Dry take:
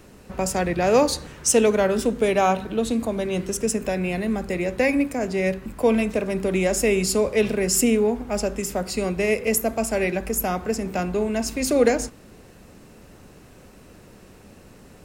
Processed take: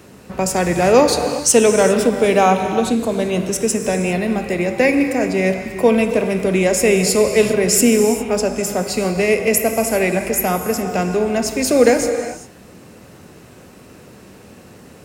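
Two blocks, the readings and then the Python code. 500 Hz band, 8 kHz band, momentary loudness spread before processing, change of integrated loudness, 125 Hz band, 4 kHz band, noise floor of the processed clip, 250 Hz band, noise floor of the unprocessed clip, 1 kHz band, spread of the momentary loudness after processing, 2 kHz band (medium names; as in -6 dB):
+6.5 dB, +6.5 dB, 7 LU, +6.0 dB, +6.0 dB, +6.5 dB, -43 dBFS, +5.5 dB, -48 dBFS, +6.5 dB, 7 LU, +6.5 dB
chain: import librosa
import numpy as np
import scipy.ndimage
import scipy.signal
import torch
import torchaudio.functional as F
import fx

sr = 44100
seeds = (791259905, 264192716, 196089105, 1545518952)

y = scipy.signal.sosfilt(scipy.signal.butter(2, 86.0, 'highpass', fs=sr, output='sos'), x)
y = fx.rev_gated(y, sr, seeds[0], gate_ms=430, shape='flat', drr_db=6.5)
y = y * librosa.db_to_amplitude(5.5)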